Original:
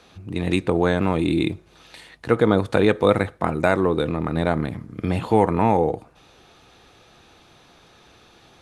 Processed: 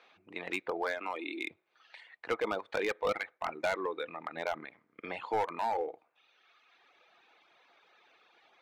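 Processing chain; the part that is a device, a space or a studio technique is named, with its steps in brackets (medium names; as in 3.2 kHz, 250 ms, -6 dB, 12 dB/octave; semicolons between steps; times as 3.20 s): 0.85–1.51 s: high-pass 240 Hz 24 dB/octave; megaphone (band-pass 580–3200 Hz; peaking EQ 2.2 kHz +6 dB 0.36 oct; hard clipper -17 dBFS, distortion -11 dB); reverb removal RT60 1.4 s; trim -7 dB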